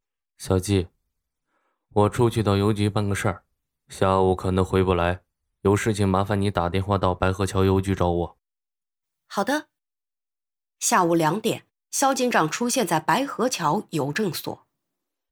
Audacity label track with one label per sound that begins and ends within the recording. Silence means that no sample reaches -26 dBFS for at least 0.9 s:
1.960000	8.260000	sound
9.330000	9.600000	sound